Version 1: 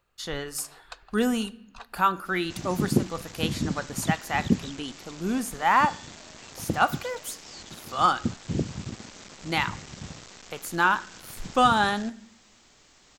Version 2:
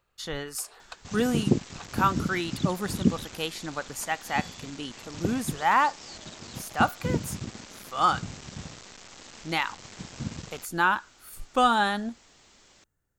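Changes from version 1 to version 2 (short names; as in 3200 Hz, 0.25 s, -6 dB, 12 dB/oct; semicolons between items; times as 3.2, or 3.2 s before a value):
second sound: entry -1.45 s; reverb: off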